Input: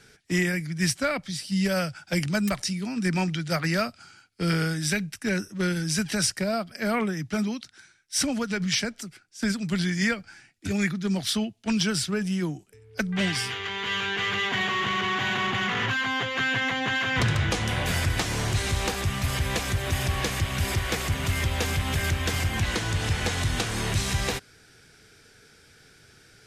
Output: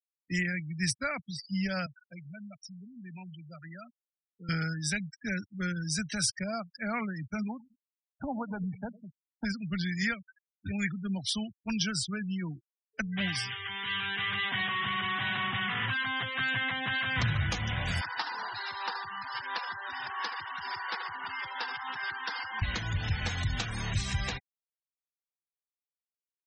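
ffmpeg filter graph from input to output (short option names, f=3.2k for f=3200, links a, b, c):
-filter_complex "[0:a]asettb=1/sr,asplit=3[a][b][c];[a]atrim=end=1.864[d];[b]atrim=start=1.86:end=4.49,asetpts=PTS-STARTPTS,afade=t=in:d=0.004:c=qsin,afade=t=out:st=2.626:d=0.004:c=qsin,highpass=f=130:w=0.5412,highpass=f=130:w=1.3066,highshelf=f=7.1k:g=6.5,acompressor=threshold=-45dB:ratio=2:attack=3.2:release=140:knee=1:detection=peak[e];[c]atrim=start=4.486[f];[d][e]acrossfade=d=0.004:c1=hsin:c2=qsin[g];[g][f]acrossfade=d=0.004:c1=qsin:c2=hsin,asettb=1/sr,asplit=3[h][i][j];[h]atrim=end=7.494[k];[i]atrim=start=7.49:end=9.45,asetpts=PTS-STARTPTS,afade=t=in:d=0.004:c=qsin,afade=t=out:st=1.956:d=0.004:c=qsin,lowpass=f=860:t=q:w=3.1,aecho=1:1:104|208|312|416|520:0.133|0.072|0.0389|0.021|0.0113,atrim=end_sample=86436[l];[j]atrim=start=9.446[m];[k][l]acrossfade=d=0.004:c1=hsin:c2=qsin[n];[n][m]acrossfade=d=0.004:c1=qsin:c2=hsin,asettb=1/sr,asplit=3[o][p][q];[o]atrim=end=18.014[r];[p]atrim=start=18.01:end=22.62,asetpts=PTS-STARTPTS,afade=t=in:d=0.004:c=qsin,afade=t=out:st=4.606:d=0.004:c=qsin,highpass=460,equalizer=f=610:t=q:w=4:g=-7,equalizer=f=930:t=q:w=4:g=10,equalizer=f=1.5k:t=q:w=4:g=4,equalizer=f=2.3k:t=q:w=4:g=-6,equalizer=f=3.3k:t=q:w=4:g=-3,equalizer=f=4.9k:t=q:w=4:g=4,lowpass=f=5.2k:w=0.5412,lowpass=f=5.2k:w=1.3066,aecho=1:1:77:0.355,atrim=end_sample=203301[s];[q]atrim=start=22.616[t];[r][s]acrossfade=d=0.004:c1=hsin:c2=qsin[u];[u][t]acrossfade=d=0.004:c1=qsin:c2=hsin,afftdn=nr=17:nf=-38,afftfilt=real='re*gte(hypot(re,im),0.0251)':imag='im*gte(hypot(re,im),0.0251)':win_size=1024:overlap=0.75,equalizer=f=400:w=1.1:g=-11.5,volume=-3.5dB"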